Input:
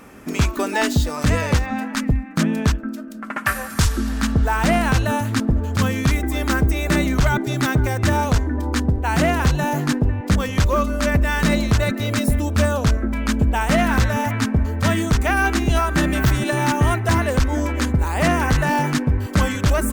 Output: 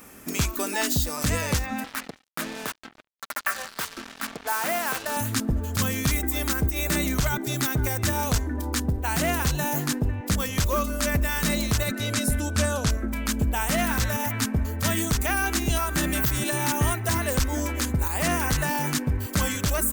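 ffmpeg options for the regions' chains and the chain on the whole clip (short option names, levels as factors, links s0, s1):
-filter_complex "[0:a]asettb=1/sr,asplit=3[s0][s1][s2];[s0]atrim=end=1.844[s3];[s1]atrim=start=1.84:end=5.17,asetpts=PTS-STARTPTS,afade=t=in:d=0.004:c=qsin,afade=t=out:st=3.326:d=0.004:c=qsin,highpass=450,lowpass=2300,acrusher=bits=4:mix=0:aa=0.5[s4];[s2]atrim=start=5.166[s5];[s3][s4]acrossfade=d=0.004:c1=hsin:c2=qsin[s6];[s6][s5]acrossfade=d=0.004:c1=qsin:c2=hsin,asettb=1/sr,asplit=3[s7][s8][s9];[s7]atrim=end=11.924[s10];[s8]atrim=start=11.92:end=12.9,asetpts=PTS-STARTPTS,afade=t=in:d=0.004:c=qsin,afade=t=out:st=0.976:d=0.004:c=qsin,lowpass=9700,aeval=exprs='val(0)+0.0178*sin(2*PI*1500*n/s)':c=same[s11];[s9]atrim=start=12.896[s12];[s10][s11]acrossfade=d=0.004:c1=hsin:c2=qsin[s13];[s13][s12]acrossfade=d=0.004:c1=qsin:c2=hsin,aemphasis=mode=production:type=75kf,alimiter=limit=0.447:level=0:latency=1:release=89,volume=0.473"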